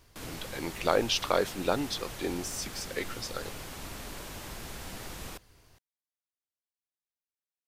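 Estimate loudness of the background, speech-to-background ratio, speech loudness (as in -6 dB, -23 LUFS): -42.0 LUFS, 10.0 dB, -32.0 LUFS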